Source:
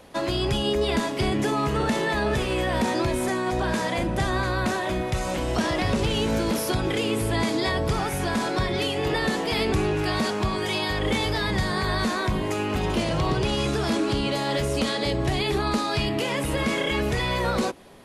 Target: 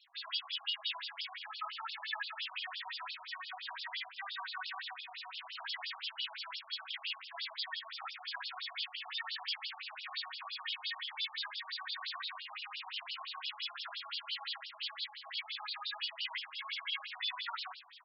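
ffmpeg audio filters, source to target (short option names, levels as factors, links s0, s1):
-filter_complex "[0:a]highpass=540,aderivative,afftfilt=real='re*gte(hypot(re,im),0.000708)':imag='im*gte(hypot(re,im),0.000708)':win_size=1024:overlap=0.75,highshelf=f=7600:g=-5.5,alimiter=level_in=1.78:limit=0.0631:level=0:latency=1:release=138,volume=0.562,areverse,acompressor=mode=upward:threshold=0.00708:ratio=2.5,areverse,flanger=delay=4.9:depth=9.3:regen=6:speed=1.6:shape=triangular,asplit=2[s0][s1];[s1]aecho=0:1:20|46|79.8|123.7|180.9:0.631|0.398|0.251|0.158|0.1[s2];[s0][s2]amix=inputs=2:normalize=0,afftfilt=real='re*between(b*sr/1024,850*pow(4000/850,0.5+0.5*sin(2*PI*5.8*pts/sr))/1.41,850*pow(4000/850,0.5+0.5*sin(2*PI*5.8*pts/sr))*1.41)':imag='im*between(b*sr/1024,850*pow(4000/850,0.5+0.5*sin(2*PI*5.8*pts/sr))/1.41,850*pow(4000/850,0.5+0.5*sin(2*PI*5.8*pts/sr))*1.41)':win_size=1024:overlap=0.75,volume=2.11"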